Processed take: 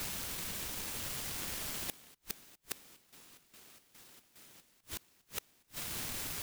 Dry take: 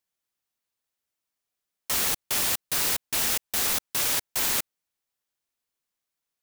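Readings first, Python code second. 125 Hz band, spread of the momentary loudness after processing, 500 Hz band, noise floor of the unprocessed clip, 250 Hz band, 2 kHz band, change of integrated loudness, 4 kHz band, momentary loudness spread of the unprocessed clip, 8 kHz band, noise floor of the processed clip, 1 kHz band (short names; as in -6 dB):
-4.0 dB, 19 LU, -11.5 dB, under -85 dBFS, -7.5 dB, -12.5 dB, -15.5 dB, -13.0 dB, 3 LU, -13.5 dB, -70 dBFS, -13.0 dB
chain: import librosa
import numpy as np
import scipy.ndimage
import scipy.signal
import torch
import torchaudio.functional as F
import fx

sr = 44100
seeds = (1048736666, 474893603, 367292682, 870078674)

p1 = fx.spec_quant(x, sr, step_db=30)
p2 = scipy.signal.sosfilt(scipy.signal.butter(2, 210.0, 'highpass', fs=sr, output='sos'), p1)
p3 = fx.peak_eq(p2, sr, hz=13000.0, db=-13.5, octaves=0.72)
p4 = fx.quant_dither(p3, sr, seeds[0], bits=6, dither='triangular')
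p5 = p3 + (p4 * librosa.db_to_amplitude(-7.0))
p6 = fx.dereverb_blind(p5, sr, rt60_s=0.67)
p7 = fx.low_shelf(p6, sr, hz=380.0, db=9.0)
p8 = p7 + fx.echo_single(p7, sr, ms=1022, db=-10.5, dry=0)
p9 = fx.gate_flip(p8, sr, shuts_db=-27.0, range_db=-36)
p10 = fx.noise_mod_delay(p9, sr, seeds[1], noise_hz=2600.0, depth_ms=0.45)
y = p10 * librosa.db_to_amplitude(5.5)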